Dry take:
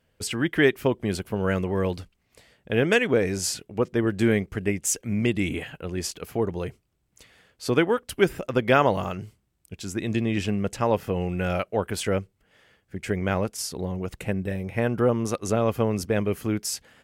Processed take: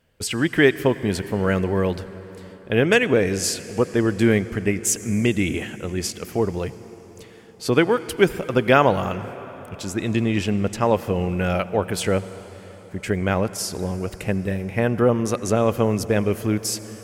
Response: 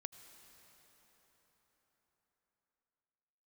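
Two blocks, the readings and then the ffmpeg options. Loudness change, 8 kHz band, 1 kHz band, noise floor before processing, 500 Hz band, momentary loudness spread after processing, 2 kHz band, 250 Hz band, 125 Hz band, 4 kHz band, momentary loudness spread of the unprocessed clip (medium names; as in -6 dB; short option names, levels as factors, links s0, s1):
+4.0 dB, +4.0 dB, +4.0 dB, -71 dBFS, +4.0 dB, 15 LU, +4.0 dB, +4.0 dB, +4.0 dB, +4.0 dB, 10 LU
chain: -filter_complex "[0:a]asplit=2[s0][s1];[1:a]atrim=start_sample=2205[s2];[s1][s2]afir=irnorm=-1:irlink=0,volume=1.78[s3];[s0][s3]amix=inputs=2:normalize=0,volume=0.75"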